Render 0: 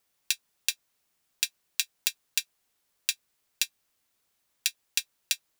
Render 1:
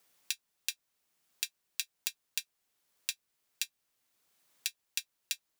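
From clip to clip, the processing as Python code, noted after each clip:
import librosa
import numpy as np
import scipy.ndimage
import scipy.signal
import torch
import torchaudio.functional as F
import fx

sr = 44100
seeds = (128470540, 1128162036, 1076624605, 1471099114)

y = fx.band_squash(x, sr, depth_pct=40)
y = y * librosa.db_to_amplitude(-7.0)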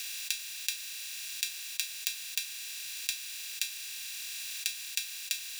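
y = fx.bin_compress(x, sr, power=0.2)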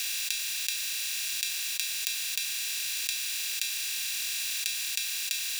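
y = fx.env_flatten(x, sr, amount_pct=70)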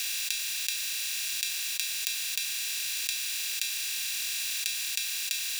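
y = x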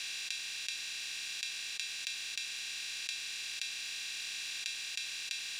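y = fx.air_absorb(x, sr, metres=84.0)
y = y * librosa.db_to_amplitude(-3.5)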